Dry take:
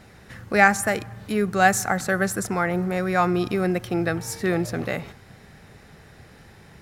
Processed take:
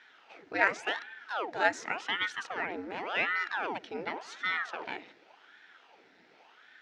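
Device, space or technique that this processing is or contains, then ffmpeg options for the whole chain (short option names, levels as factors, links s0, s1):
voice changer toy: -af "aeval=exprs='val(0)*sin(2*PI*880*n/s+880*0.9/0.89*sin(2*PI*0.89*n/s))':c=same,highpass=400,equalizer=f=560:t=q:w=4:g=-7,equalizer=f=1100:t=q:w=4:g=-10,equalizer=f=4700:t=q:w=4:g=-3,lowpass=f=5000:w=0.5412,lowpass=f=5000:w=1.3066,volume=0.596"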